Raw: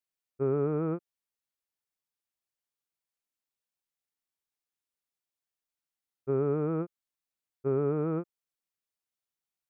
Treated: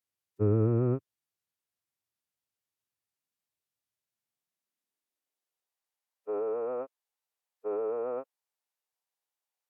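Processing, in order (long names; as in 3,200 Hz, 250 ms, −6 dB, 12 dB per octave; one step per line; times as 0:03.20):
high-pass filter sweep 130 Hz → 640 Hz, 0:04.02–0:05.77
phase-vocoder pitch shift with formants kept −4.5 semitones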